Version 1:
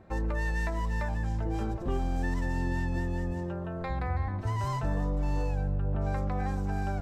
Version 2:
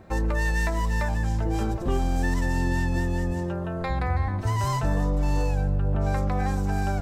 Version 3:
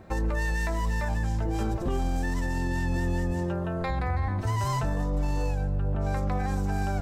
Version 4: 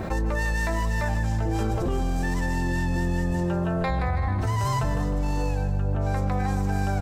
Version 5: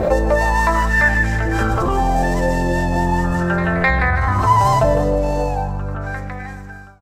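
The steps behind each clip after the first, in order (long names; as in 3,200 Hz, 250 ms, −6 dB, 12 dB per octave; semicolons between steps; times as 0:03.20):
high-shelf EQ 4,500 Hz +8.5 dB; level +5.5 dB
brickwall limiter −19.5 dBFS, peak gain reduction 6 dB
repeating echo 154 ms, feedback 51%, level −11 dB; envelope flattener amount 70%
fade-out on the ending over 2.21 s; echo ahead of the sound 259 ms −12 dB; auto-filter bell 0.39 Hz 550–1,900 Hz +15 dB; level +6 dB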